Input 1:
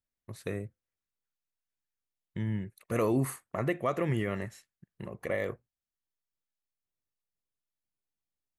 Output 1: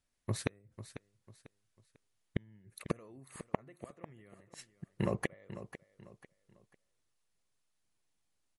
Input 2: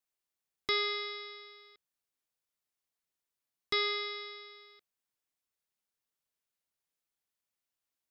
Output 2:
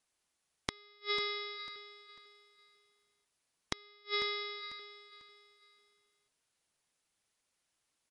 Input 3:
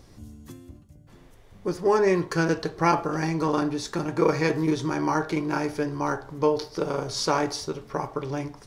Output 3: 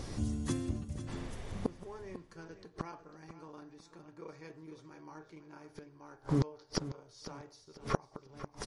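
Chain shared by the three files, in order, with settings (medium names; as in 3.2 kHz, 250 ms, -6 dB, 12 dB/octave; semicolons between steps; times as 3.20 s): inverted gate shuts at -26 dBFS, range -36 dB; feedback delay 496 ms, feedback 32%, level -13 dB; trim +9.5 dB; MP3 48 kbps 48 kHz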